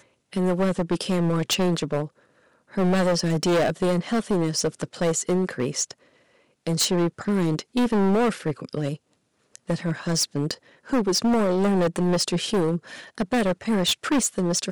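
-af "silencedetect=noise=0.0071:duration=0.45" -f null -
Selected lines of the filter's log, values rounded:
silence_start: 2.08
silence_end: 2.71 | silence_duration: 0.63
silence_start: 5.92
silence_end: 6.67 | silence_duration: 0.75
silence_start: 8.96
silence_end: 9.55 | silence_duration: 0.59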